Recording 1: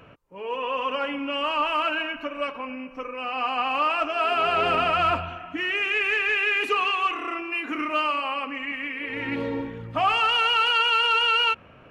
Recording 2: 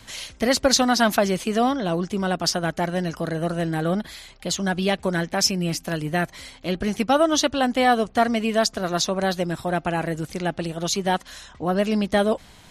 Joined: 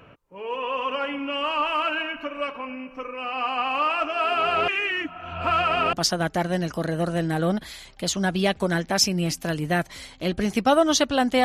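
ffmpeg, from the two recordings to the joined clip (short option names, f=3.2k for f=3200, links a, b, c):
-filter_complex "[0:a]apad=whole_dur=11.44,atrim=end=11.44,asplit=2[a][b];[a]atrim=end=4.682[c];[b]atrim=start=4.678:end=5.932,asetpts=PTS-STARTPTS,areverse[d];[1:a]atrim=start=2.358:end=7.87[e];[c][d]acrossfade=d=0.004:c1=hsin:c2=hsin[f];[f][e]acrossfade=d=0.004:c1=hsin:c2=hsin"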